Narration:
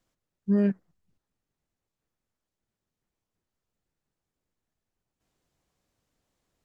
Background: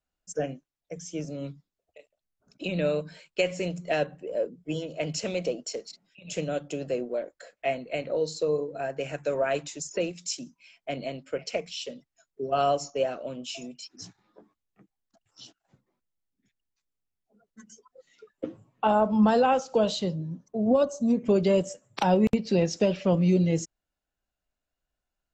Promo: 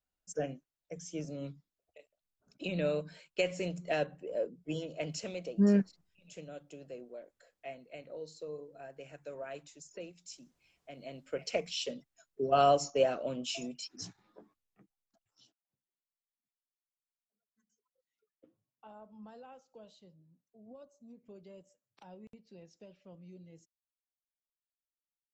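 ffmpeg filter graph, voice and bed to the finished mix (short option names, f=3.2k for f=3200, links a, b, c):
-filter_complex "[0:a]adelay=5100,volume=-2dB[a];[1:a]volume=10.5dB,afade=t=out:st=4.87:d=0.8:silence=0.281838,afade=t=in:st=10.96:d=0.81:silence=0.158489,afade=t=out:st=14.12:d=1.48:silence=0.0316228[b];[a][b]amix=inputs=2:normalize=0"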